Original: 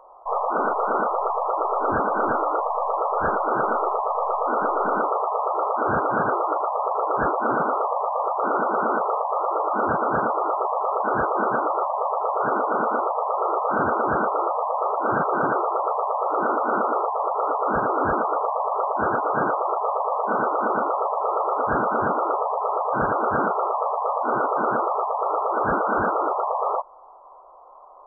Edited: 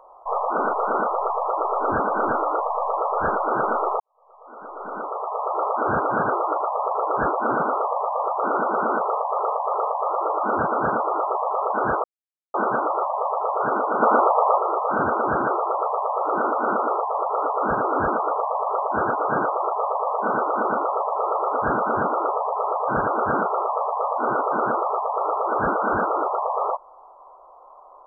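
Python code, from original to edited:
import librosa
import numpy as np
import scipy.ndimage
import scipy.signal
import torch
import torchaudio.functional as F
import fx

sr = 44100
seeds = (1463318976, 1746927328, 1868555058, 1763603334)

y = fx.edit(x, sr, fx.fade_in_span(start_s=4.0, length_s=1.61, curve='qua'),
    fx.repeat(start_s=9.04, length_s=0.35, count=3),
    fx.insert_silence(at_s=11.34, length_s=0.5),
    fx.clip_gain(start_s=12.82, length_s=0.56, db=6.0),
    fx.cut(start_s=14.21, length_s=1.25), tone=tone)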